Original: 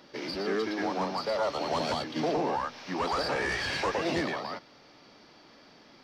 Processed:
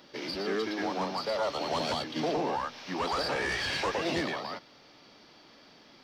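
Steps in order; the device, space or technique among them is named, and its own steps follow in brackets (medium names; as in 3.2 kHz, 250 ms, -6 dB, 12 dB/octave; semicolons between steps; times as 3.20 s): presence and air boost (peaking EQ 3.3 kHz +3.5 dB 0.77 oct; treble shelf 9.3 kHz +5.5 dB); trim -1.5 dB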